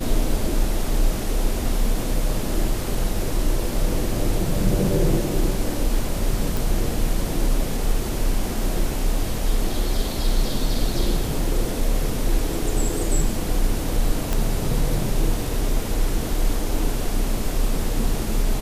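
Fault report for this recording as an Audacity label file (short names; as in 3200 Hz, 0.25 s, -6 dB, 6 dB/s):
6.570000	6.570000	pop
14.330000	14.330000	pop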